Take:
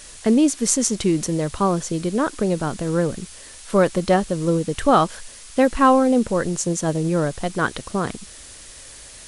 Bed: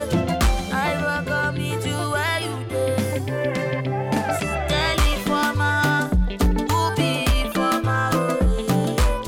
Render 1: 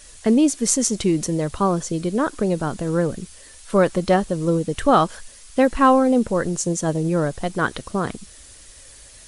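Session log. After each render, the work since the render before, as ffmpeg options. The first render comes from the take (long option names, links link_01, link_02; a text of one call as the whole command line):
ffmpeg -i in.wav -af "afftdn=noise_reduction=6:noise_floor=-42" out.wav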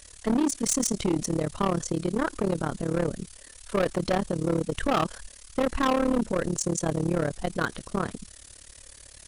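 ffmpeg -i in.wav -af "tremolo=f=36:d=0.919,asoftclip=type=hard:threshold=-19.5dB" out.wav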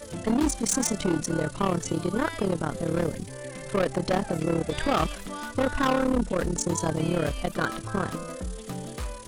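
ffmpeg -i in.wav -i bed.wav -filter_complex "[1:a]volume=-15.5dB[link_01];[0:a][link_01]amix=inputs=2:normalize=0" out.wav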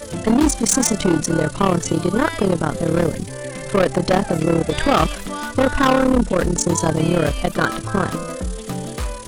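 ffmpeg -i in.wav -af "volume=8.5dB" out.wav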